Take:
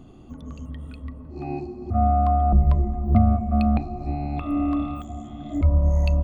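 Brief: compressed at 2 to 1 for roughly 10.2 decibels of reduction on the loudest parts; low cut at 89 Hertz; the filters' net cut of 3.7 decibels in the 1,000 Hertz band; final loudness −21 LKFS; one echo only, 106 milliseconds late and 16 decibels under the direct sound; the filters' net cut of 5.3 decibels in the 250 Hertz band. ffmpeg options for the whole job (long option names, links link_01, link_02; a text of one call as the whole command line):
ffmpeg -i in.wav -af "highpass=89,equalizer=frequency=250:width_type=o:gain=-6,equalizer=frequency=1000:width_type=o:gain=-6,acompressor=threshold=-37dB:ratio=2,aecho=1:1:106:0.158,volume=16dB" out.wav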